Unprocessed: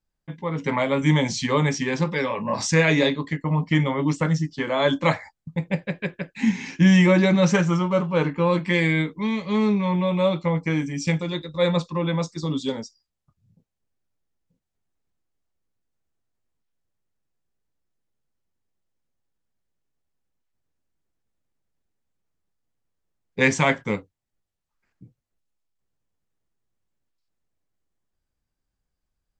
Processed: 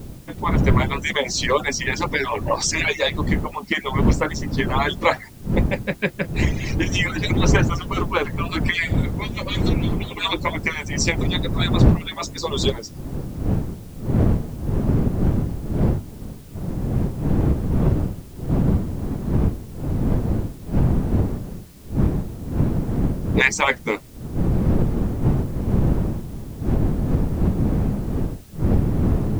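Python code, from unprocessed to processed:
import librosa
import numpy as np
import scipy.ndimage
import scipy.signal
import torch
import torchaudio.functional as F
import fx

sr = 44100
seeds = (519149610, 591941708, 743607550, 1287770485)

p1 = fx.hpss_only(x, sr, part='percussive')
p2 = fx.dmg_wind(p1, sr, seeds[0], corner_hz=180.0, level_db=-30.0)
p3 = fx.recorder_agc(p2, sr, target_db=-13.5, rise_db_per_s=14.0, max_gain_db=30)
p4 = fx.quant_dither(p3, sr, seeds[1], bits=8, dither='triangular')
p5 = p3 + (p4 * 10.0 ** (-3.0 / 20.0))
y = p5 * 10.0 ** (-1.0 / 20.0)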